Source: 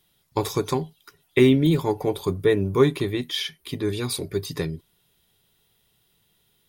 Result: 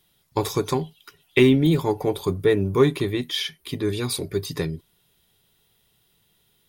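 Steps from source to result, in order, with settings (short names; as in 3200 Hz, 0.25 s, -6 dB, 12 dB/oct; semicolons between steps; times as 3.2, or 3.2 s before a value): 0.79–1.43 bell 2900 Hz +8.5 dB 0.61 oct; in parallel at -10.5 dB: soft clip -16.5 dBFS, distortion -11 dB; on the sum: gain -1 dB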